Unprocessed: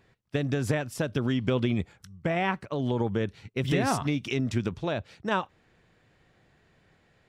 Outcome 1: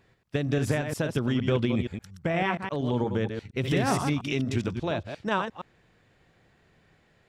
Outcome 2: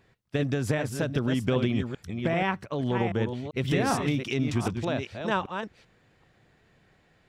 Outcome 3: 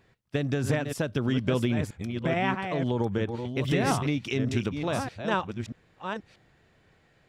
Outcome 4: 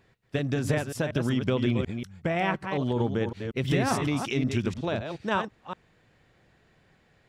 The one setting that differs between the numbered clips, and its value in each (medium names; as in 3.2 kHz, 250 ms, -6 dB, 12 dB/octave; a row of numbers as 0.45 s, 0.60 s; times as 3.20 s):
chunks repeated in reverse, time: 117 ms, 390 ms, 636 ms, 185 ms